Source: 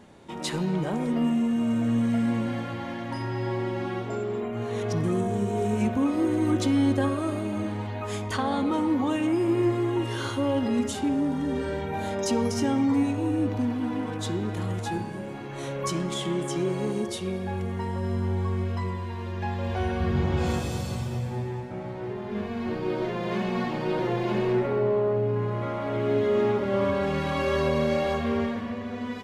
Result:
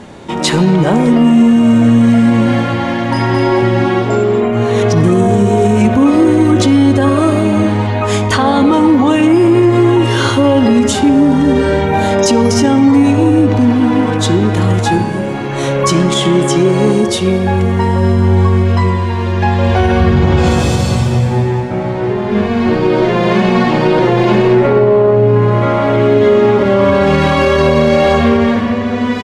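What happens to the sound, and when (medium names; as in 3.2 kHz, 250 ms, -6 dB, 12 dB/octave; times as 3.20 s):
2.96–3.40 s: echo throw 220 ms, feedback 45%, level -3 dB
whole clip: low-pass 9.8 kHz 12 dB/octave; loudness maximiser +19 dB; trim -1 dB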